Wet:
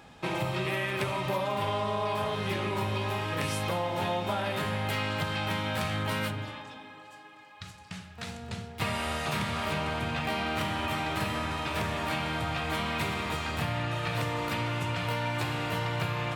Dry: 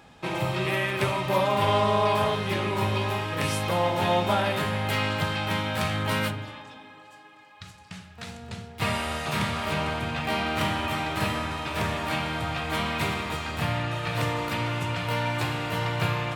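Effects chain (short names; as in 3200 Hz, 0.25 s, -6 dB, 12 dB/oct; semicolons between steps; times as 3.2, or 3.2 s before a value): compressor, threshold -27 dBFS, peak gain reduction 8.5 dB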